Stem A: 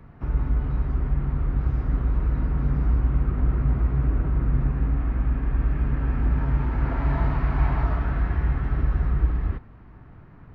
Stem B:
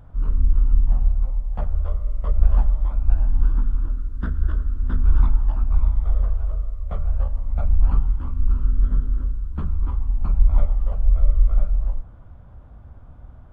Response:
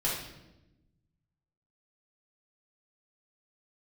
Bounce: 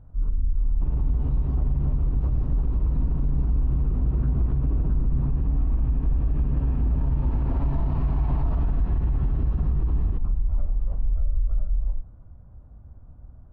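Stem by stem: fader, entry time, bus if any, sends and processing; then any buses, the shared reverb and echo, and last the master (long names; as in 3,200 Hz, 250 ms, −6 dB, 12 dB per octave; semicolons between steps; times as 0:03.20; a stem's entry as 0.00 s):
−4.0 dB, 0.60 s, no send, flat-topped bell 1,700 Hz −9 dB 1 octave
−10.0 dB, 0.00 s, no send, low-pass filter 1,300 Hz 6 dB per octave; brickwall limiter −11 dBFS, peak gain reduction 7.5 dB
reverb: not used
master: low-shelf EQ 450 Hz +7.5 dB; brickwall limiter −16 dBFS, peak gain reduction 11 dB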